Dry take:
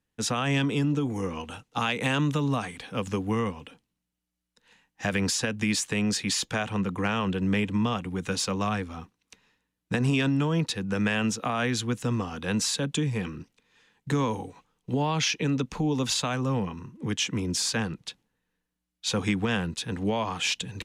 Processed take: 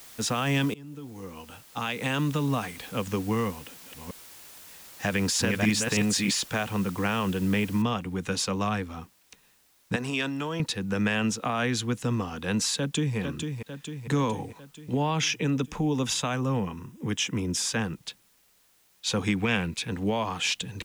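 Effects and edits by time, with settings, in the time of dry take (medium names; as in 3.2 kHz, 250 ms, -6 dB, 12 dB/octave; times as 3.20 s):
0.74–2.55 s: fade in, from -23.5 dB
3.49–6.31 s: chunks repeated in reverse 310 ms, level -2 dB
7.82 s: noise floor step -48 dB -64 dB
9.96–10.60 s: high-pass 510 Hz 6 dB/octave
12.76–13.17 s: echo throw 450 ms, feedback 60%, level -6 dB
14.94–17.96 s: band-stop 4.3 kHz, Q 5.2
19.37–19.88 s: peaking EQ 2.3 kHz +13.5 dB 0.25 oct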